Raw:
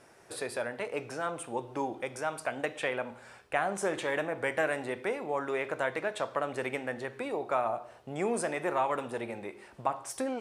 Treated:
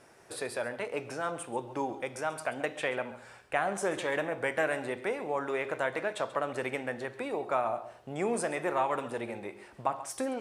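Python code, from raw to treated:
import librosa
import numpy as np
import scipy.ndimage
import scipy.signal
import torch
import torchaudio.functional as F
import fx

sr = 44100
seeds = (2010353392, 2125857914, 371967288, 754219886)

y = x + 10.0 ** (-15.5 / 20.0) * np.pad(x, (int(135 * sr / 1000.0), 0))[:len(x)]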